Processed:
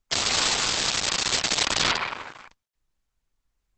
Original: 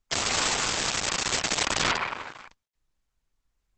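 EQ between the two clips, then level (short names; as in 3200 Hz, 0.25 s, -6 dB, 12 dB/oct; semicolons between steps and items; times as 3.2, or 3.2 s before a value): dynamic EQ 4100 Hz, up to +6 dB, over -41 dBFS, Q 1.4; 0.0 dB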